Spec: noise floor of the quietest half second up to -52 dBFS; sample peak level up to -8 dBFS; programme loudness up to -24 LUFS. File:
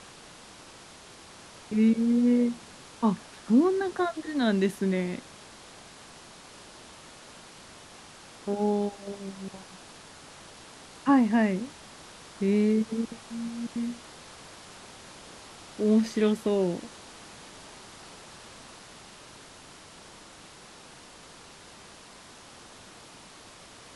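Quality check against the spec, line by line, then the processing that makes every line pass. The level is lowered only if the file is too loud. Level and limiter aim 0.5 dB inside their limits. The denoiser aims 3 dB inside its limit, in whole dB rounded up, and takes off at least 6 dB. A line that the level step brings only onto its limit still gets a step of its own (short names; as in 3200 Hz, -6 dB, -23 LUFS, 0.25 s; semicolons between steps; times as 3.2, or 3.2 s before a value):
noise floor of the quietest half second -50 dBFS: fail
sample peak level -10.0 dBFS: OK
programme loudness -27.0 LUFS: OK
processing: denoiser 6 dB, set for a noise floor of -50 dBFS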